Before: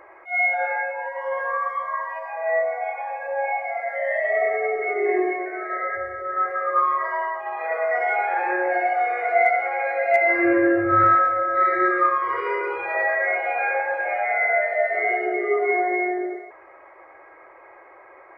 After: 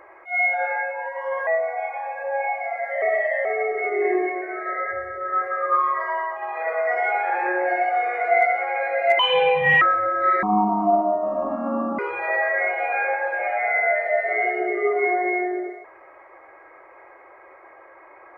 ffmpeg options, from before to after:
-filter_complex "[0:a]asplit=8[s0][s1][s2][s3][s4][s5][s6][s7];[s0]atrim=end=1.472[s8];[s1]atrim=start=2.508:end=4.062[s9];[s2]atrim=start=4.058:end=4.492,asetpts=PTS-STARTPTS,areverse[s10];[s3]atrim=start=4.488:end=10.234[s11];[s4]atrim=start=10.23:end=11.15,asetpts=PTS-STARTPTS,asetrate=64827,aresample=44100[s12];[s5]atrim=start=11.146:end=11.764[s13];[s6]atrim=start=11.76:end=12.65,asetpts=PTS-STARTPTS,asetrate=25137,aresample=44100[s14];[s7]atrim=start=12.646[s15];[s8][s9]acrossfade=d=0.004:c1=hsin:c2=hsin[s16];[s16][s10]acrossfade=d=0.004:c1=hsin:c2=hsin[s17];[s17][s11]acrossfade=d=0.004:c1=hsin:c2=hsin[s18];[s18][s12]acrossfade=d=0.004:c1=hsin:c2=hsin[s19];[s19][s13]acrossfade=d=0.004:c1=hsin:c2=hsin[s20];[s20][s14]acrossfade=d=0.004:c1=hsin:c2=hsin[s21];[s21][s15]acrossfade=d=0.004:c1=hsin:c2=hsin"

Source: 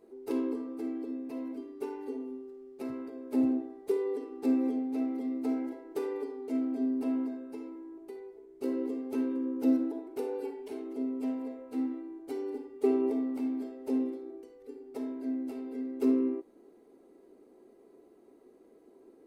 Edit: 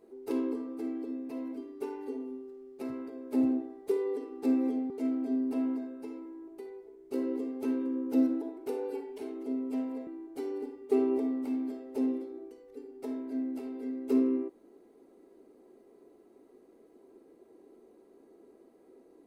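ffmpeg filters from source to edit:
-filter_complex "[0:a]asplit=3[s0][s1][s2];[s0]atrim=end=4.902[s3];[s1]atrim=start=6.398:end=11.572[s4];[s2]atrim=start=11.988[s5];[s3][s4]acrossfade=d=0.004:c1=hsin:c2=hsin[s6];[s6][s5]acrossfade=d=0.004:c1=hsin:c2=hsin"

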